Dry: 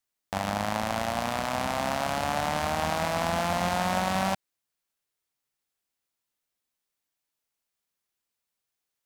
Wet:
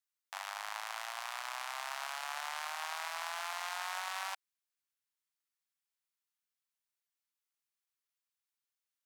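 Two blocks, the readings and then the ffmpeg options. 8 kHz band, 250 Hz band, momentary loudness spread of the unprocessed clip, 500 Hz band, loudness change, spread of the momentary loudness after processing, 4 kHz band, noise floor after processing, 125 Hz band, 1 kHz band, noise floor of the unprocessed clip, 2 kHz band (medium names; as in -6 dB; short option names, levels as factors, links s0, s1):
-7.5 dB, under -40 dB, 4 LU, -22.0 dB, -11.5 dB, 4 LU, -7.5 dB, under -85 dBFS, under -40 dB, -12.5 dB, -85 dBFS, -7.5 dB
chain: -af "highpass=f=970:w=0.5412,highpass=f=970:w=1.3066,volume=0.422"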